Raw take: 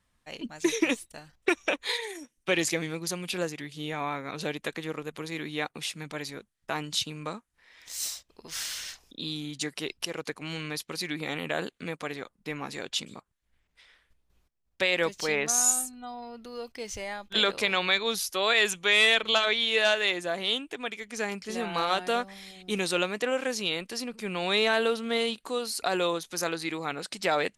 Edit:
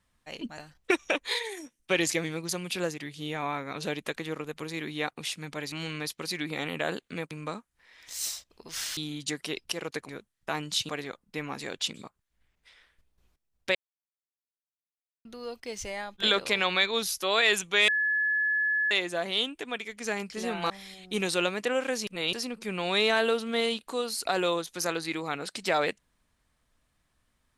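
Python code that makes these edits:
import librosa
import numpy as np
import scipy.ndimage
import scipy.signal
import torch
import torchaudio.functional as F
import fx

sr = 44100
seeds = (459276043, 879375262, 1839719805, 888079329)

y = fx.edit(x, sr, fx.cut(start_s=0.58, length_s=0.58),
    fx.swap(start_s=6.3, length_s=0.8, other_s=10.42, other_length_s=1.59),
    fx.cut(start_s=8.76, length_s=0.54),
    fx.silence(start_s=14.87, length_s=1.5),
    fx.bleep(start_s=19.0, length_s=1.03, hz=1710.0, db=-23.5),
    fx.cut(start_s=21.82, length_s=0.45),
    fx.reverse_span(start_s=23.64, length_s=0.26), tone=tone)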